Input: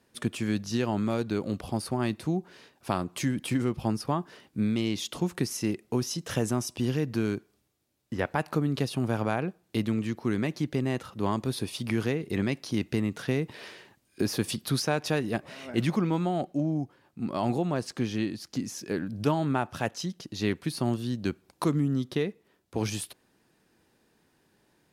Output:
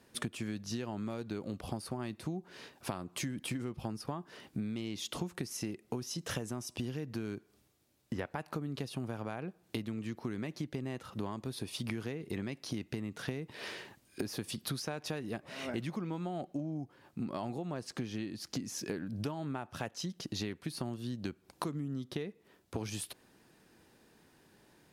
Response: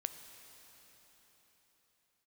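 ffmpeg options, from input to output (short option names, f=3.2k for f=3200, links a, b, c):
-af "acompressor=threshold=-38dB:ratio=10,volume=3.5dB"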